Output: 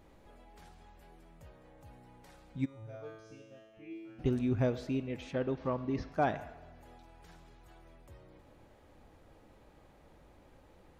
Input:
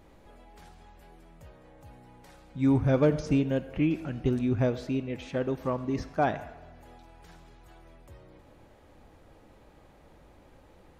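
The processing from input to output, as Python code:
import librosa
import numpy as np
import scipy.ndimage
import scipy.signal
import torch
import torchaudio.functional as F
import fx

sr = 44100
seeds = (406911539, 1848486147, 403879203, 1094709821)

y = fx.comb_fb(x, sr, f0_hz=110.0, decay_s=1.1, harmonics='all', damping=0.0, mix_pct=100, at=(2.64, 4.18), fade=0.02)
y = fx.lowpass(y, sr, hz=5200.0, slope=24, at=(5.33, 6.12))
y = y * 10.0 ** (-4.0 / 20.0)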